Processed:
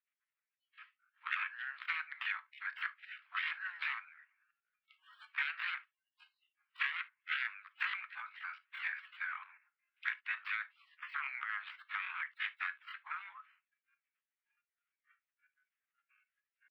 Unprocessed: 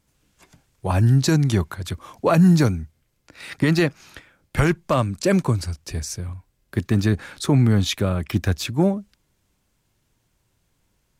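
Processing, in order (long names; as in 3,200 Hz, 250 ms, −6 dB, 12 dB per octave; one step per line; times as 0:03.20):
stylus tracing distortion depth 0.3 ms
gate on every frequency bin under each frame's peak −25 dB weak
noise reduction from a noise print of the clip's start 20 dB
harmonic and percussive parts rebalanced harmonic −17 dB
in parallel at −10.5 dB: hard clipping −21 dBFS, distortion −17 dB
on the sum: inverse Chebyshev low-pass filter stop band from 5,900 Hz, stop band 50 dB
downward compressor 20 to 1, threshold −50 dBFS, peak gain reduction 21 dB
tempo change 0.67×
Butterworth high-pass 1,300 Hz 36 dB per octave
on a send at −13 dB: convolution reverb, pre-delay 3 ms
on the sum: level +17.5 dB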